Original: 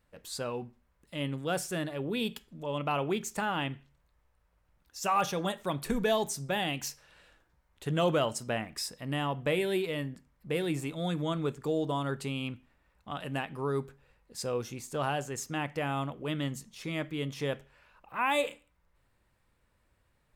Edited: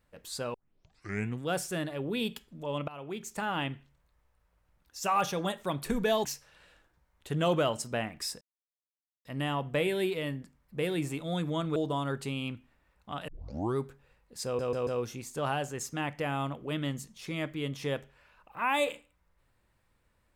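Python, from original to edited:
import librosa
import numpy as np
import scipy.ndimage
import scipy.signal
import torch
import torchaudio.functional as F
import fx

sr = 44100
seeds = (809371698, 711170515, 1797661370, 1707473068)

y = fx.edit(x, sr, fx.tape_start(start_s=0.54, length_s=0.88),
    fx.fade_in_from(start_s=2.88, length_s=0.69, floor_db=-20.0),
    fx.cut(start_s=6.25, length_s=0.56),
    fx.insert_silence(at_s=8.97, length_s=0.84),
    fx.cut(start_s=11.48, length_s=0.27),
    fx.tape_start(start_s=13.27, length_s=0.48),
    fx.stutter(start_s=14.44, slice_s=0.14, count=4), tone=tone)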